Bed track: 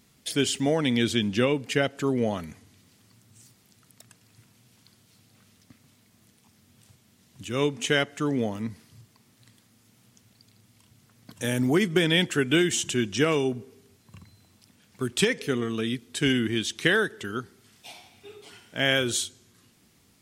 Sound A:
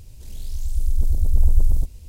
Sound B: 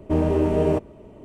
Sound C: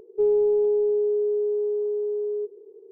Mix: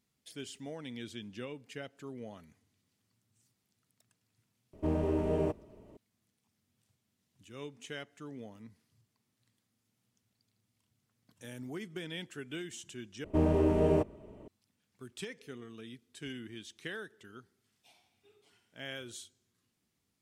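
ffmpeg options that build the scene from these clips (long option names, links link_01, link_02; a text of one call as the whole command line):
ffmpeg -i bed.wav -i cue0.wav -i cue1.wav -filter_complex "[2:a]asplit=2[link_01][link_02];[0:a]volume=-19.5dB,asplit=2[link_03][link_04];[link_03]atrim=end=13.244[link_05];[link_02]atrim=end=1.24,asetpts=PTS-STARTPTS,volume=-6.5dB[link_06];[link_04]atrim=start=14.476[link_07];[link_01]atrim=end=1.24,asetpts=PTS-STARTPTS,volume=-10.5dB,afade=type=in:duration=0.004:curve=hsin,afade=type=out:start_time=1.236:duration=0.004:curve=hsin,adelay=208593S[link_08];[link_05][link_06]acrossfade=duration=0.004:curve1=hsin:curve2=hsin[link_09];[link_09][link_07]acrossfade=duration=0.004:curve1=hsin:curve2=hsin[link_10];[link_10][link_08]amix=inputs=2:normalize=0" out.wav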